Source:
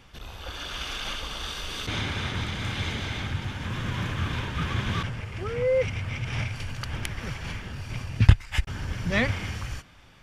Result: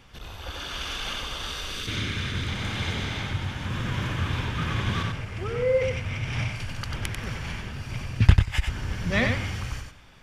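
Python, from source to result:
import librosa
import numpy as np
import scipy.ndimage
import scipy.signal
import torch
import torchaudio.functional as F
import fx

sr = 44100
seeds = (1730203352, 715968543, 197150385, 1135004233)

y = fx.peak_eq(x, sr, hz=800.0, db=-12.0, octaves=0.78, at=(1.71, 2.48))
y = fx.echo_feedback(y, sr, ms=93, feedback_pct=17, wet_db=-5.0)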